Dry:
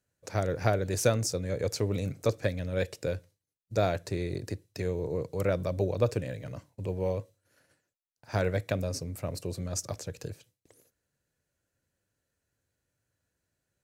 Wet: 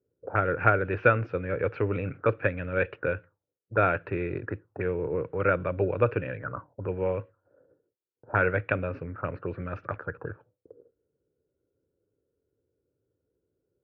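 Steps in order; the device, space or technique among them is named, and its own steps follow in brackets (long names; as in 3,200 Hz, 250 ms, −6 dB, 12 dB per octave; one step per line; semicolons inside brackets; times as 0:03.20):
envelope filter bass rig (envelope-controlled low-pass 420–2,500 Hz up, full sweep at −30.5 dBFS; loudspeaker in its box 67–2,300 Hz, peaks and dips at 90 Hz −4 dB, 140 Hz −5 dB, 210 Hz −8 dB, 670 Hz −6 dB, 1,400 Hz +10 dB, 2,100 Hz −10 dB)
level +4 dB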